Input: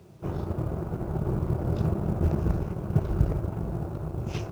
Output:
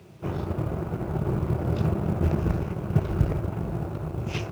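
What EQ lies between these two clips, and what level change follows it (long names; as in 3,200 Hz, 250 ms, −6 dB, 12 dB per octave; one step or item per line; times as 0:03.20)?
high-pass filter 60 Hz
parametric band 2,400 Hz +6.5 dB 1.3 octaves
+2.0 dB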